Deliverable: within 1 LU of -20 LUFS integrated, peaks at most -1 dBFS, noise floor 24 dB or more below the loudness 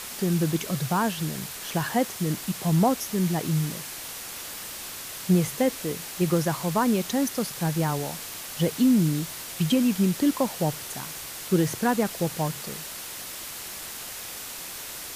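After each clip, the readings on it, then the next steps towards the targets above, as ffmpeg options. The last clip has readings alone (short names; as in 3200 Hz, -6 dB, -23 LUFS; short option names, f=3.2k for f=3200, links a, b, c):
noise floor -38 dBFS; noise floor target -51 dBFS; loudness -27.0 LUFS; peak -10.5 dBFS; loudness target -20.0 LUFS
-> -af "afftdn=nr=13:nf=-38"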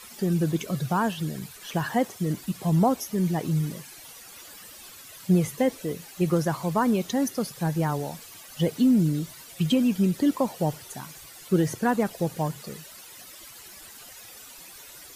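noise floor -46 dBFS; noise floor target -50 dBFS
-> -af "afftdn=nr=6:nf=-46"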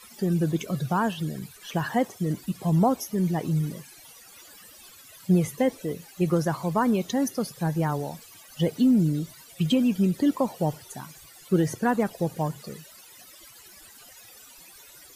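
noise floor -50 dBFS; loudness -26.0 LUFS; peak -11.5 dBFS; loudness target -20.0 LUFS
-> -af "volume=6dB"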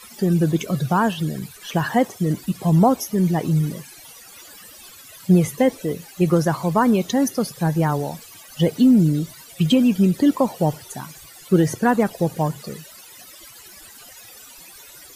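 loudness -20.0 LUFS; peak -5.5 dBFS; noise floor -44 dBFS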